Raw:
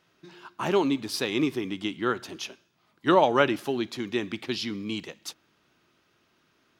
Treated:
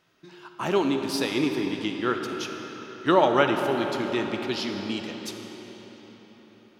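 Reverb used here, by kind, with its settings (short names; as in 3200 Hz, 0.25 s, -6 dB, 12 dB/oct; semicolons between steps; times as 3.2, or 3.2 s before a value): digital reverb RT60 4.9 s, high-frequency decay 0.75×, pre-delay 5 ms, DRR 4 dB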